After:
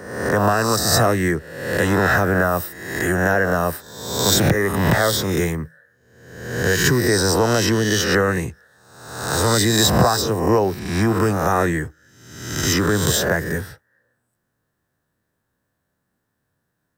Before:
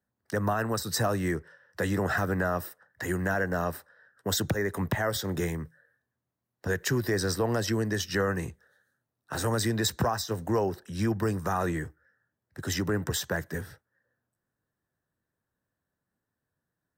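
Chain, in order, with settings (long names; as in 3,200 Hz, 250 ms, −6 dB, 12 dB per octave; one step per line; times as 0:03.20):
peak hold with a rise ahead of every peak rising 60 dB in 0.92 s
level +8 dB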